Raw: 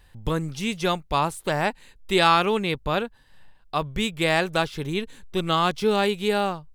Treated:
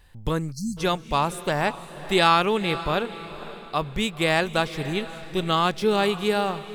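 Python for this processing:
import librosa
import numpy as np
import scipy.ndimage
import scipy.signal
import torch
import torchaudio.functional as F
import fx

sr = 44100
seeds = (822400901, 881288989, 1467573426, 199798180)

y = fx.echo_diffused(x, sr, ms=514, feedback_pct=42, wet_db=-14.0)
y = fx.spec_erase(y, sr, start_s=0.52, length_s=0.25, low_hz=240.0, high_hz=4100.0)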